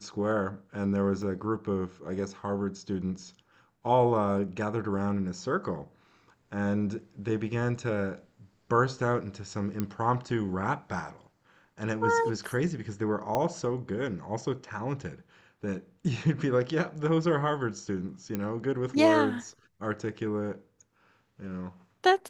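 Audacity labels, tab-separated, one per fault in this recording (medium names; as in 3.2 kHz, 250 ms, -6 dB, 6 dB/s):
1.220000	1.220000	dropout 2.7 ms
9.800000	9.800000	pop -17 dBFS
13.350000	13.350000	pop -15 dBFS
18.350000	18.350000	pop -18 dBFS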